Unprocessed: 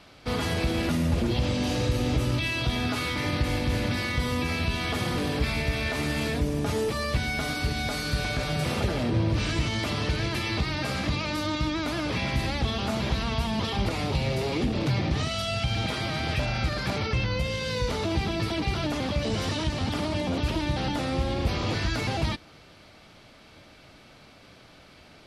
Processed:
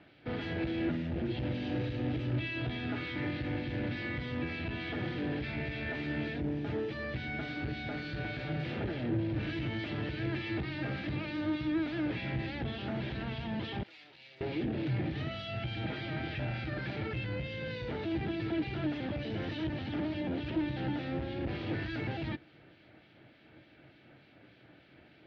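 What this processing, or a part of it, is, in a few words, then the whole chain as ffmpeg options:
guitar amplifier with harmonic tremolo: -filter_complex "[0:a]acrossover=split=2200[link_01][link_02];[link_01]aeval=exprs='val(0)*(1-0.5/2+0.5/2*cos(2*PI*3.4*n/s))':channel_layout=same[link_03];[link_02]aeval=exprs='val(0)*(1-0.5/2-0.5/2*cos(2*PI*3.4*n/s))':channel_layout=same[link_04];[link_03][link_04]amix=inputs=2:normalize=0,asoftclip=type=tanh:threshold=-24.5dB,highpass=79,equalizer=frequency=130:width_type=q:width=4:gain=6,equalizer=frequency=320:width_type=q:width=4:gain=9,equalizer=frequency=1100:width_type=q:width=4:gain=-10,equalizer=frequency=1700:width_type=q:width=4:gain=5,lowpass=frequency=3400:width=0.5412,lowpass=frequency=3400:width=1.3066,asettb=1/sr,asplit=3[link_05][link_06][link_07];[link_05]atrim=end=13.834[link_08];[link_06]atrim=start=13.83:end=14.41,asetpts=PTS-STARTPTS,afade=type=in:duration=0.004:curve=qsin,afade=type=out:start_time=0.576:duration=0.004:curve=qsin,aderivative[link_09];[link_07]atrim=start=14.406[link_10];[link_08][link_09]acrossfade=duration=0.004:curve1=hsin:curve2=qsin[link_11];[link_11][link_10]acrossfade=duration=0.004:curve1=qsin:curve2=hsin,volume=-5.5dB"

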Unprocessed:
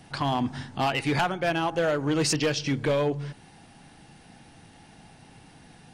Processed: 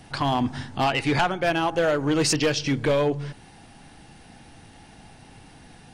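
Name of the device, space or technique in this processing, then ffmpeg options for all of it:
low shelf boost with a cut just above: -filter_complex "[0:a]asettb=1/sr,asplit=3[link_01][link_02][link_03];[link_01]atrim=end=0.844[link_04];[link_02]atrim=start=0.84:end=1.36,asetpts=PTS-STARTPTS,afade=type=in:duration=0.004:curve=qsin,afade=type=out:start_time=0.516:duration=0.004:curve=qsin,lowpass=9300[link_05];[link_03]atrim=start=1.356[link_06];[link_04][link_05]acrossfade=duration=0.004:curve1=hsin:curve2=qsin[link_07];[link_07][link_06]acrossfade=duration=0.004:curve1=qsin:curve2=hsin,lowshelf=frequency=64:gain=7,equalizer=frequency=160:width_type=o:width=0.55:gain=-3.5,volume=3dB"

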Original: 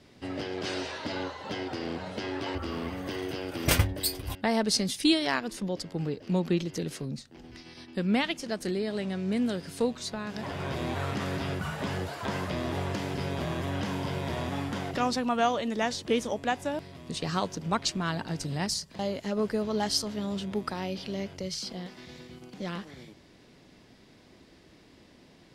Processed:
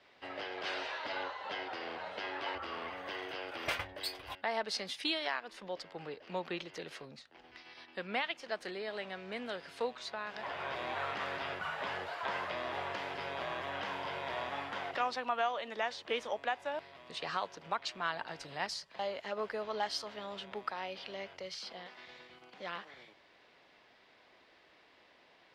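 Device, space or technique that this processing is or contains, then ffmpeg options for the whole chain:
DJ mixer with the lows and highs turned down: -filter_complex "[0:a]acrossover=split=540 3900:gain=0.0794 1 0.112[link_01][link_02][link_03];[link_01][link_02][link_03]amix=inputs=3:normalize=0,alimiter=limit=-22dB:level=0:latency=1:release=309"

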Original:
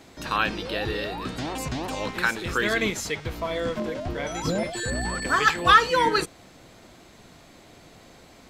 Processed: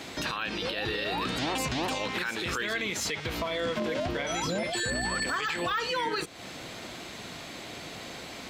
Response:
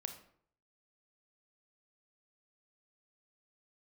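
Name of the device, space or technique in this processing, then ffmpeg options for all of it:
broadcast voice chain: -af "highpass=frequency=110:poles=1,deesser=0.65,acompressor=threshold=-35dB:ratio=4,equalizer=frequency=3000:width_type=o:width=1.8:gain=6,alimiter=level_in=5dB:limit=-24dB:level=0:latency=1:release=41,volume=-5dB,volume=7.5dB"

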